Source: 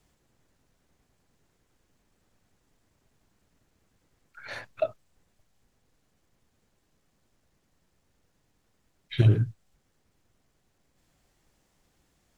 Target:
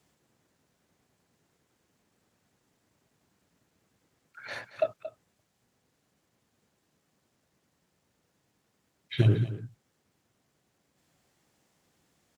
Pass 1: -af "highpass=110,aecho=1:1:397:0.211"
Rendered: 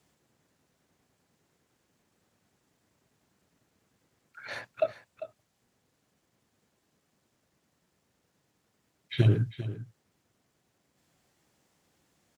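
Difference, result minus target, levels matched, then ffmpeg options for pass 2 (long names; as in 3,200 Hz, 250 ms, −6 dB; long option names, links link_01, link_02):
echo 170 ms late
-af "highpass=110,aecho=1:1:227:0.211"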